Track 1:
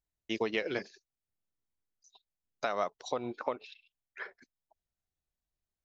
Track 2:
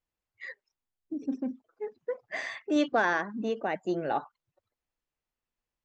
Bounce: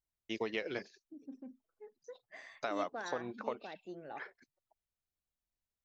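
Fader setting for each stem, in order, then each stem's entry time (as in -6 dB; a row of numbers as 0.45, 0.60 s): -5.0, -17.0 dB; 0.00, 0.00 s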